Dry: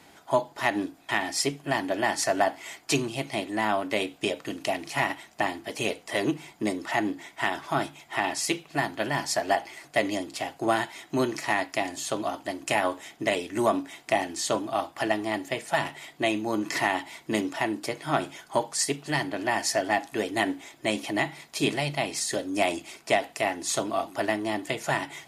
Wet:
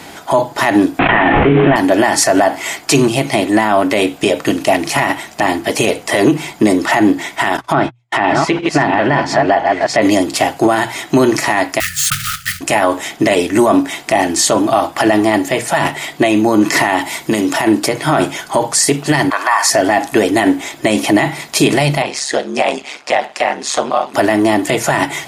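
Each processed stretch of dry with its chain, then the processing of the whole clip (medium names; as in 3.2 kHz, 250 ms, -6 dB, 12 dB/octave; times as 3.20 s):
0.99–1.76 s: CVSD coder 16 kbps + de-hum 104.3 Hz, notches 37 + level flattener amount 100%
7.57–10.02 s: chunks repeated in reverse 511 ms, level -6.5 dB + gate -41 dBFS, range -44 dB + low-pass that closes with the level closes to 2.8 kHz, closed at -26 dBFS
11.80–12.61 s: block-companded coder 3-bit + brick-wall FIR band-stop 180–1200 Hz
17.01–17.67 s: treble shelf 6.4 kHz +6.5 dB + compression 4:1, threshold -30 dBFS
19.30–19.70 s: resonant high-pass 1.1 kHz, resonance Q 6.3 + band-stop 2.9 kHz, Q 9.1
22.02–24.14 s: Bessel high-pass 520 Hz + distance through air 89 m + ring modulator 70 Hz
whole clip: hum notches 60/120 Hz; dynamic bell 3.5 kHz, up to -4 dB, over -42 dBFS, Q 0.86; loudness maximiser +21 dB; trim -1 dB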